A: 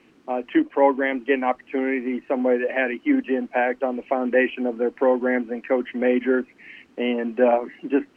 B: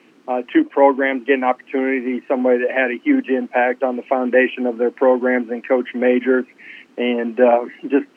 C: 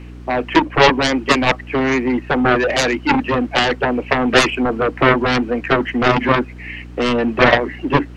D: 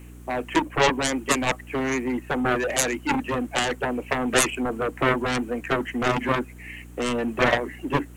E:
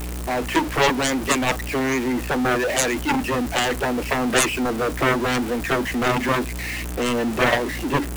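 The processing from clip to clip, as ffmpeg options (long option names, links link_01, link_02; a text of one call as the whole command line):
ffmpeg -i in.wav -af "highpass=190,volume=5dB" out.wav
ffmpeg -i in.wav -af "aeval=exprs='0.891*(cos(1*acos(clip(val(0)/0.891,-1,1)))-cos(1*PI/2))+0.447*(cos(7*acos(clip(val(0)/0.891,-1,1)))-cos(7*PI/2))':channel_layout=same,aeval=exprs='val(0)+0.0251*(sin(2*PI*60*n/s)+sin(2*PI*2*60*n/s)/2+sin(2*PI*3*60*n/s)/3+sin(2*PI*4*60*n/s)/4+sin(2*PI*5*60*n/s)/5)':channel_layout=same,volume=-1.5dB" out.wav
ffmpeg -i in.wav -af "aexciter=amount=12:drive=2.9:freq=7000,volume=-8.5dB" out.wav
ffmpeg -i in.wav -af "aeval=exprs='val(0)+0.5*0.0596*sgn(val(0))':channel_layout=same" out.wav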